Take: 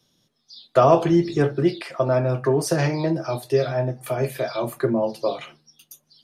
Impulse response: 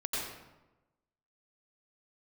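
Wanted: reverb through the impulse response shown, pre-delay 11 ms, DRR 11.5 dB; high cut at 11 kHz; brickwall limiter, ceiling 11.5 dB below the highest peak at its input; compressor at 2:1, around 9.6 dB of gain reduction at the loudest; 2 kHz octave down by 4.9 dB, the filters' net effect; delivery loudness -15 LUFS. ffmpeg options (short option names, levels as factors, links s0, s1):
-filter_complex "[0:a]lowpass=11000,equalizer=f=2000:t=o:g=-6.5,acompressor=threshold=0.0355:ratio=2,alimiter=level_in=1.12:limit=0.0631:level=0:latency=1,volume=0.891,asplit=2[s0][s1];[1:a]atrim=start_sample=2205,adelay=11[s2];[s1][s2]afir=irnorm=-1:irlink=0,volume=0.15[s3];[s0][s3]amix=inputs=2:normalize=0,volume=8.91"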